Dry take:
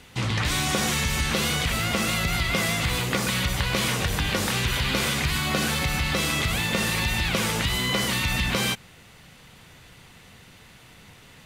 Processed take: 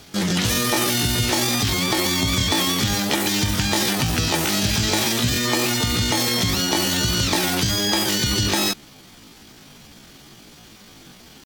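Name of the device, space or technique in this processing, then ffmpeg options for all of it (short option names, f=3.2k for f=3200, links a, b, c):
chipmunk voice: -af "asetrate=72056,aresample=44100,atempo=0.612027,volume=4.5dB"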